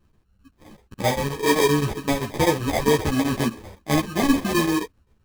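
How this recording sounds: phasing stages 12, 2.1 Hz, lowest notch 510–1100 Hz; aliases and images of a low sample rate 1400 Hz, jitter 0%; chopped level 7.7 Hz, depth 65%, duty 80%; a shimmering, thickened sound

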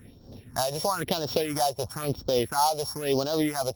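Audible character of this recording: a buzz of ramps at a fixed pitch in blocks of 8 samples; phasing stages 4, 1 Hz, lowest notch 250–2100 Hz; tremolo triangle 3.9 Hz, depth 60%; Opus

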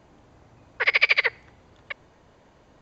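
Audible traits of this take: noise floor -57 dBFS; spectral tilt +3.0 dB/oct

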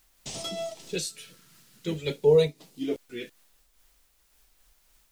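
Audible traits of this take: phasing stages 2, 0.49 Hz, lowest notch 710–1500 Hz; a quantiser's noise floor 12-bit, dither triangular; noise-modulated level

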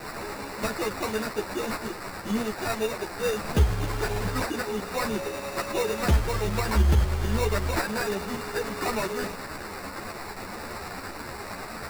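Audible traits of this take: a quantiser's noise floor 6-bit, dither triangular; tremolo saw up 9.1 Hz, depth 40%; aliases and images of a low sample rate 3200 Hz, jitter 0%; a shimmering, thickened sound

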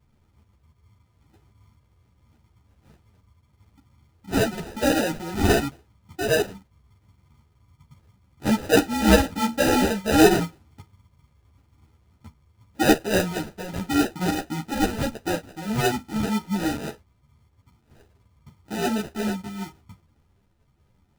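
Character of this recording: phasing stages 4, 0.86 Hz, lowest notch 430–1700 Hz; aliases and images of a low sample rate 1100 Hz, jitter 0%; a shimmering, thickened sound

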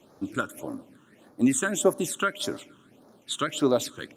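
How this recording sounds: phasing stages 8, 1.7 Hz, lowest notch 640–2800 Hz; Opus

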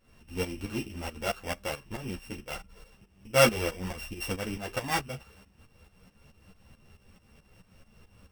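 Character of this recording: a buzz of ramps at a fixed pitch in blocks of 16 samples; tremolo saw up 4.6 Hz, depth 80%; a shimmering, thickened sound

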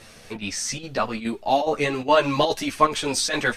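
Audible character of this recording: chopped level 2.4 Hz, depth 65%, duty 85%; a shimmering, thickened sound

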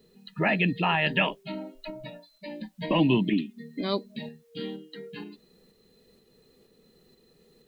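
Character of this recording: a quantiser's noise floor 12-bit, dither triangular; tremolo saw up 2.1 Hz, depth 30%

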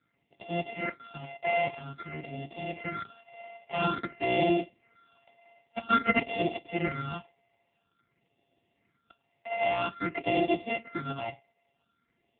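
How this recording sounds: a buzz of ramps at a fixed pitch in blocks of 64 samples; phasing stages 6, 0.5 Hz, lowest notch 340–1500 Hz; AMR-NB

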